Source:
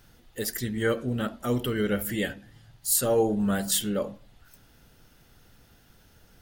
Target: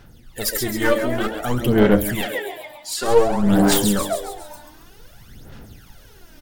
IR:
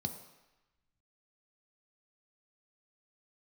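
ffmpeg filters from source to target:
-filter_complex "[0:a]asettb=1/sr,asplit=3[a][b][c];[a]atrim=end=2.214[d];[b]atrim=start=2.21:end=3.08,asetpts=PTS-STARTPTS,afade=t=in:d=0.004:c=qsin,afade=t=out:st=0.866:d=0.004:c=qsin,acrossover=split=180 5600:gain=0.0794 1 0.0794[e][f][g];[e][f][g]amix=inputs=3:normalize=0[h];[c]atrim=start=3.076[i];[d][h]acrossfade=d=0.004:c1=hsin:c2=qsin[j];[j][i]acrossfade=d=0.004:c1=qsin:c2=hsin,asplit=7[k][l][m][n][o][p][q];[l]adelay=136,afreqshift=100,volume=-8dB[r];[m]adelay=272,afreqshift=200,volume=-13.7dB[s];[n]adelay=408,afreqshift=300,volume=-19.4dB[t];[o]adelay=544,afreqshift=400,volume=-25dB[u];[p]adelay=680,afreqshift=500,volume=-30.7dB[v];[q]adelay=816,afreqshift=600,volume=-36.4dB[w];[k][r][s][t][u][v][w]amix=inputs=7:normalize=0,aeval=exprs='clip(val(0),-1,0.0376)':c=same,aphaser=in_gain=1:out_gain=1:delay=3.4:decay=0.68:speed=0.54:type=sinusoidal,dynaudnorm=f=230:g=3:m=6dB,volume=1dB"

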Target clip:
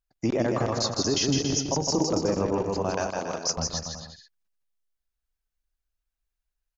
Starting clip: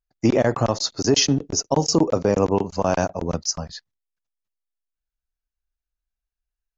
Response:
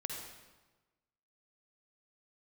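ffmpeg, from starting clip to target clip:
-filter_complex "[0:a]asettb=1/sr,asplit=3[a][b][c];[a]atrim=end=2.904[d];[b]atrim=start=2.9:end=3.48,asetpts=PTS-STARTPTS,afade=t=in:d=0.004:c=qsin,afade=t=out:st=0.576:d=0.004:c=qsin,highpass=f=980:p=1[e];[c]atrim=start=3.476[f];[d][e]acrossfade=d=0.004:c1=hsin:c2=qsin[g];[g][f]acrossfade=d=0.004:c1=qsin:c2=hsin,alimiter=limit=-16.5dB:level=0:latency=1:release=180,aecho=1:1:160|280|370|437.5|488.1:0.631|0.398|0.251|0.158|0.1"

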